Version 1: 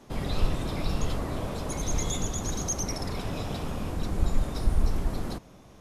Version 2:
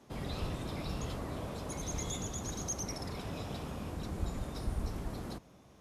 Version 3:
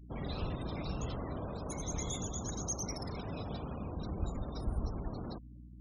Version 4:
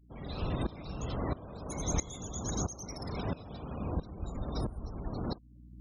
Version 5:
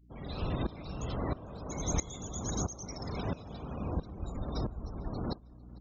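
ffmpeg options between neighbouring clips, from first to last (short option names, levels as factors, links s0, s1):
-af "highpass=50,volume=0.447"
-af "aeval=exprs='val(0)+0.00316*(sin(2*PI*60*n/s)+sin(2*PI*2*60*n/s)/2+sin(2*PI*3*60*n/s)/3+sin(2*PI*4*60*n/s)/4+sin(2*PI*5*60*n/s)/5)':c=same,afftfilt=real='re*gte(hypot(re,im),0.00562)':imag='im*gte(hypot(re,im),0.00562)':win_size=1024:overlap=0.75"
-af "aeval=exprs='val(0)*pow(10,-18*if(lt(mod(-1.5*n/s,1),2*abs(-1.5)/1000),1-mod(-1.5*n/s,1)/(2*abs(-1.5)/1000),(mod(-1.5*n/s,1)-2*abs(-1.5)/1000)/(1-2*abs(-1.5)/1000))/20)':c=same,volume=2.66"
-filter_complex "[0:a]asplit=2[s0][s1];[s1]adelay=450,lowpass=f=4300:p=1,volume=0.0708,asplit=2[s2][s3];[s3]adelay=450,lowpass=f=4300:p=1,volume=0.5,asplit=2[s4][s5];[s5]adelay=450,lowpass=f=4300:p=1,volume=0.5[s6];[s0][s2][s4][s6]amix=inputs=4:normalize=0,aresample=16000,aresample=44100"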